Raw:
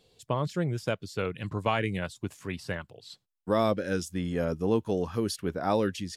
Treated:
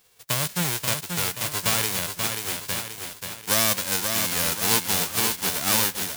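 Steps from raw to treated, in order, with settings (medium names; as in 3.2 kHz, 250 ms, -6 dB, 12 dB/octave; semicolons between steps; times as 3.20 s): formants flattened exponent 0.1; bit-crushed delay 533 ms, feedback 55%, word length 8-bit, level -5 dB; trim +3.5 dB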